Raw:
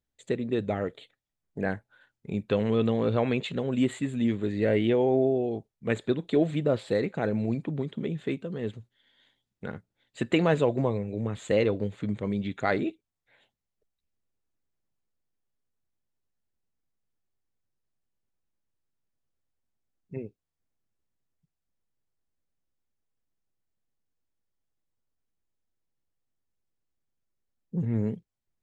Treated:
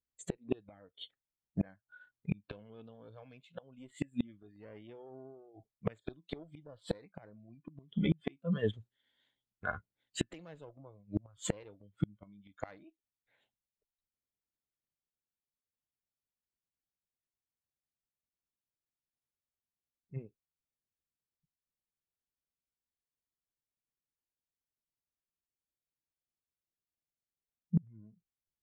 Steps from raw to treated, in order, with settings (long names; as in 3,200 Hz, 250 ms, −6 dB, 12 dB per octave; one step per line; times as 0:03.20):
one-sided soft clipper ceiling −23 dBFS
noise reduction from a noise print of the clip's start 20 dB
gate with flip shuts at −26 dBFS, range −34 dB
level +8 dB